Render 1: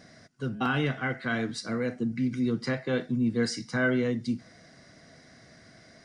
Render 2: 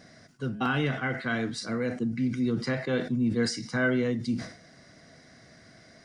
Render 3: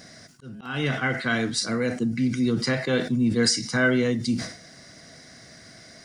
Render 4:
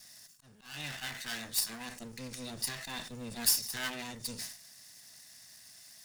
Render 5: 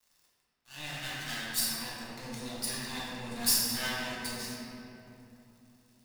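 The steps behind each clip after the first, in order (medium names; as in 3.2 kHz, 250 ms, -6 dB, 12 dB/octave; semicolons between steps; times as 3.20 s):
decay stretcher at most 110 dB/s
treble shelf 3.9 kHz +10.5 dB; slow attack 319 ms; trim +4 dB
comb filter that takes the minimum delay 1.1 ms; pre-emphasis filter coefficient 0.9
crossover distortion -49 dBFS; simulated room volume 130 m³, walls hard, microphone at 0.89 m; trim -1.5 dB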